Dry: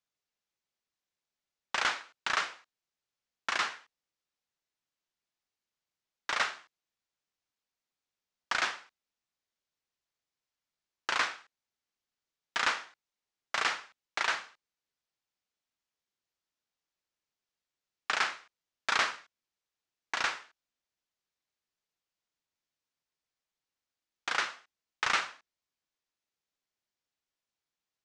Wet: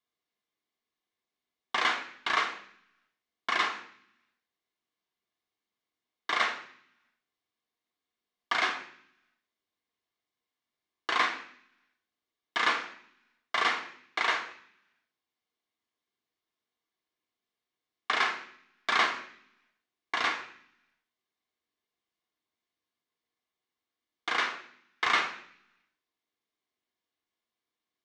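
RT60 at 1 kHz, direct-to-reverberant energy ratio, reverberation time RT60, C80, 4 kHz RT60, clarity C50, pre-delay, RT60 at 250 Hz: 0.60 s, 0.5 dB, 0.60 s, 13.5 dB, 0.80 s, 10.0 dB, 3 ms, 1.0 s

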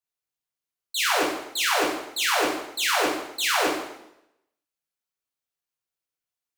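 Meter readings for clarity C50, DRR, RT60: 2.5 dB, -5.5 dB, 0.85 s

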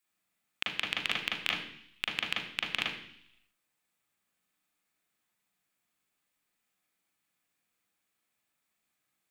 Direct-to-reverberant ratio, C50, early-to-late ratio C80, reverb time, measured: -3.0 dB, 4.5 dB, 8.5 dB, 0.70 s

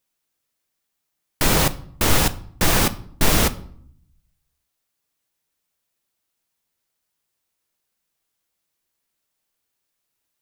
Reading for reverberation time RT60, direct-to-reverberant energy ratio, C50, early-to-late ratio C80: 0.65 s, 12.0 dB, 18.0 dB, 22.0 dB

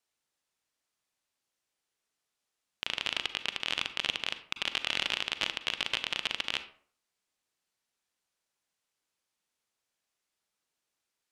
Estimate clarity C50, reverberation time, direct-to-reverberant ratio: 12.0 dB, 0.50 s, 10.5 dB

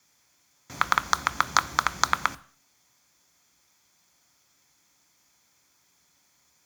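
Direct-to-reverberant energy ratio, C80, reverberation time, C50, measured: 12.0 dB, 24.5 dB, 0.50 s, 21.0 dB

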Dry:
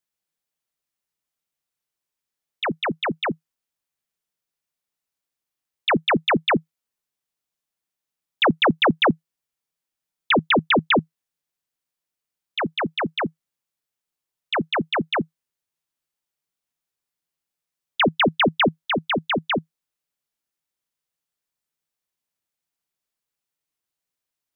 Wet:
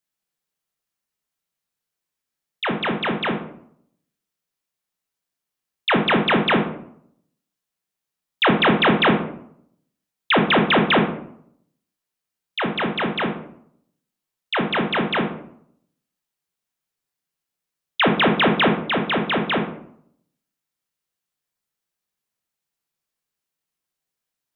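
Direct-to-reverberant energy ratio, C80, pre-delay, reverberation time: 2.0 dB, 10.5 dB, 18 ms, 0.65 s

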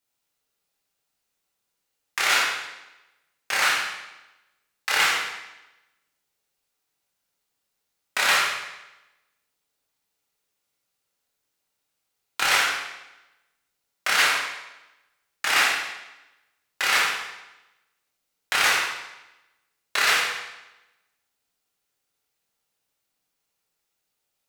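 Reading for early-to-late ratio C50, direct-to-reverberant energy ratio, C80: 1.0 dB, -5.0 dB, 3.5 dB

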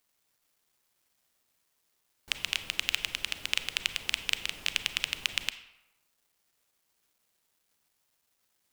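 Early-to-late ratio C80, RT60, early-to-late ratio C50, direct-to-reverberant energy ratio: 15.0 dB, 0.95 s, 12.5 dB, 11.0 dB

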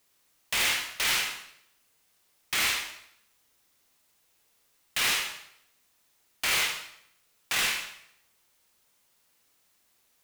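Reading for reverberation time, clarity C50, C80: 0.70 s, 5.0 dB, 8.5 dB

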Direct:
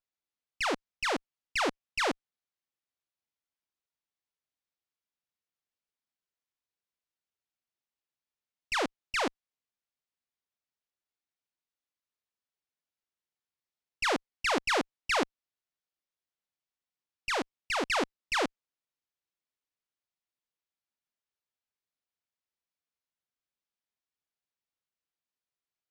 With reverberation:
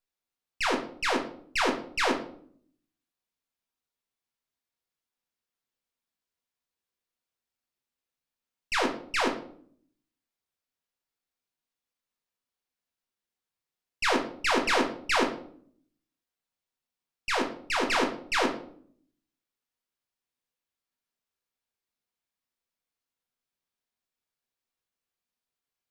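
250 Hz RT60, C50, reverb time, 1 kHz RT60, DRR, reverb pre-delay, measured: 0.90 s, 9.0 dB, 0.55 s, 0.50 s, 1.5 dB, 4 ms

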